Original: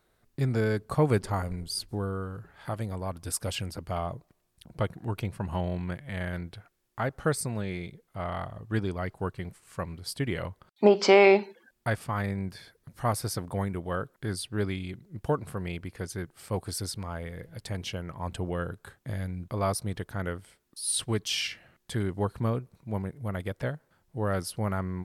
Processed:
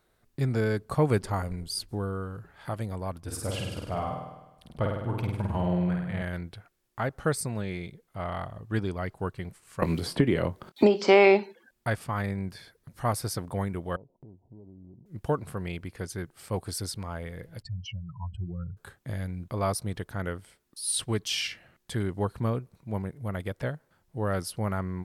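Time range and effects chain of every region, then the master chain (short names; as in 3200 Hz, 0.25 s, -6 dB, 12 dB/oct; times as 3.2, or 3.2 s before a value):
3.2–6.22 high shelf 2700 Hz -8.5 dB + flutter echo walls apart 8.7 m, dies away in 1 s
9.82–11.08 bell 310 Hz +8 dB 1.9 oct + doubler 24 ms -13.5 dB + three-band squash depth 100%
13.96–15.06 rippled Chebyshev low-pass 970 Hz, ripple 3 dB + compressor 16:1, threshold -45 dBFS
17.62–18.77 spectral contrast raised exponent 3 + fixed phaser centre 2400 Hz, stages 8
whole clip: dry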